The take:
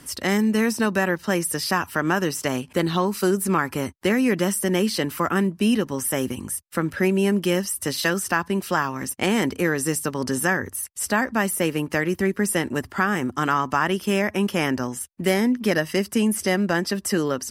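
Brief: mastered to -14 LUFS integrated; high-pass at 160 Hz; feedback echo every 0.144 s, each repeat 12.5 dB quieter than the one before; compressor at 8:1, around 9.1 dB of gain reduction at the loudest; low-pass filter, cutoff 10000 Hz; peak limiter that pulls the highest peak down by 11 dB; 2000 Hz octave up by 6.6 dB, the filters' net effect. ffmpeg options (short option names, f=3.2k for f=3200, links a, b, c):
-af "highpass=160,lowpass=10k,equalizer=f=2k:t=o:g=8,acompressor=threshold=-22dB:ratio=8,alimiter=limit=-17.5dB:level=0:latency=1,aecho=1:1:144|288|432:0.237|0.0569|0.0137,volume=14.5dB"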